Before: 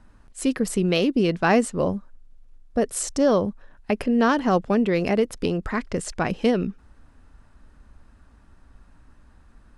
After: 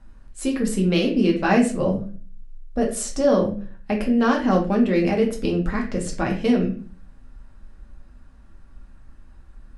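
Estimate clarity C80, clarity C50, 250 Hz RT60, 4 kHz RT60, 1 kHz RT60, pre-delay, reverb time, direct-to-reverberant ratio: 13.5 dB, 8.5 dB, 0.55 s, 0.30 s, 0.35 s, 4 ms, 0.40 s, −0.5 dB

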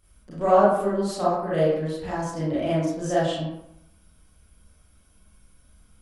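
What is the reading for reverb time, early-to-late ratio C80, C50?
0.80 s, 3.5 dB, −1.5 dB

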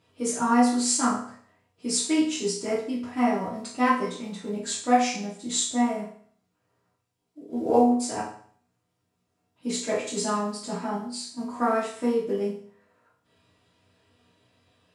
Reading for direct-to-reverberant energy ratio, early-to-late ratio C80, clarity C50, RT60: −10.5 dB, 9.5 dB, 4.5 dB, 0.55 s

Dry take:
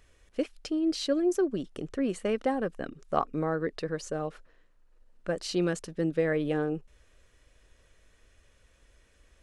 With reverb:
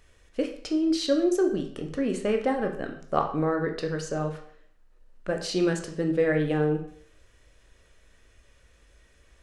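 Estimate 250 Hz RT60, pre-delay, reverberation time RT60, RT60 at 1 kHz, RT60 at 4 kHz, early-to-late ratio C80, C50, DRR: 0.55 s, 13 ms, 0.55 s, 0.55 s, 0.55 s, 12.0 dB, 9.0 dB, 3.5 dB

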